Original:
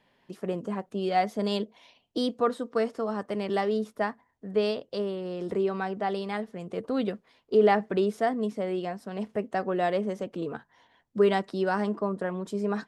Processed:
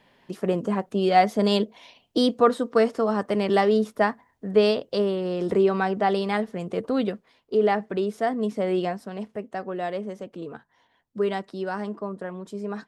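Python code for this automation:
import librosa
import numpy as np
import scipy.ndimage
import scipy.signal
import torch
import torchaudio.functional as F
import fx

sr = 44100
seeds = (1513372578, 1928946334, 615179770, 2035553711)

y = fx.gain(x, sr, db=fx.line((6.57, 7.0), (7.54, -0.5), (8.07, -0.5), (8.82, 7.0), (9.34, -3.0)))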